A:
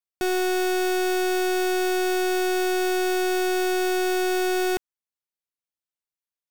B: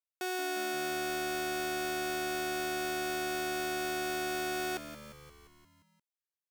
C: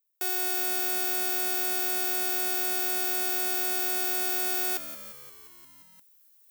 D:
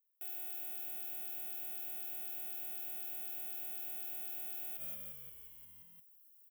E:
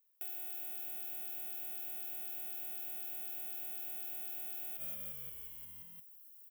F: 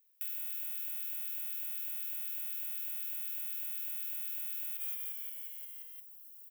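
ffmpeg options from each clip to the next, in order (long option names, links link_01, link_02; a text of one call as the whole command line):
ffmpeg -i in.wav -filter_complex "[0:a]highpass=480,asplit=2[link_01][link_02];[link_02]asplit=7[link_03][link_04][link_05][link_06][link_07][link_08][link_09];[link_03]adelay=175,afreqshift=-76,volume=-12dB[link_10];[link_04]adelay=350,afreqshift=-152,volume=-16dB[link_11];[link_05]adelay=525,afreqshift=-228,volume=-20dB[link_12];[link_06]adelay=700,afreqshift=-304,volume=-24dB[link_13];[link_07]adelay=875,afreqshift=-380,volume=-28.1dB[link_14];[link_08]adelay=1050,afreqshift=-456,volume=-32.1dB[link_15];[link_09]adelay=1225,afreqshift=-532,volume=-36.1dB[link_16];[link_10][link_11][link_12][link_13][link_14][link_15][link_16]amix=inputs=7:normalize=0[link_17];[link_01][link_17]amix=inputs=2:normalize=0,volume=-8dB" out.wav
ffmpeg -i in.wav -af "aemphasis=mode=production:type=bsi,areverse,acompressor=mode=upward:threshold=-44dB:ratio=2.5,areverse" out.wav
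ffmpeg -i in.wav -af "firequalizer=gain_entry='entry(120,0);entry(310,-19);entry(570,-11);entry(1100,-21);entry(3000,-8);entry(4400,-27);entry(11000,-5)':delay=0.05:min_phase=1,alimiter=level_in=7.5dB:limit=-24dB:level=0:latency=1:release=55,volume=-7.5dB,volume=2dB" out.wav
ffmpeg -i in.wav -af "acompressor=threshold=-47dB:ratio=2,volume=6dB" out.wav
ffmpeg -i in.wav -af "highpass=frequency=1500:width=0.5412,highpass=frequency=1500:width=1.3066,volume=4dB" out.wav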